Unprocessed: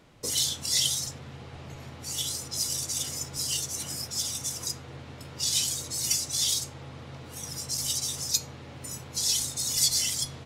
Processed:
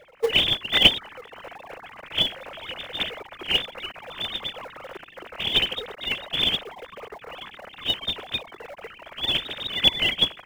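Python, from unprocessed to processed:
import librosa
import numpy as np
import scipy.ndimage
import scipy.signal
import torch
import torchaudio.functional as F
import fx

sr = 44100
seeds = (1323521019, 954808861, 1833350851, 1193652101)

p1 = fx.sine_speech(x, sr)
p2 = fx.sample_hold(p1, sr, seeds[0], rate_hz=1300.0, jitter_pct=20)
p3 = p1 + (p2 * 10.0 ** (-11.0 / 20.0))
y = p3 * 10.0 ** (3.5 / 20.0)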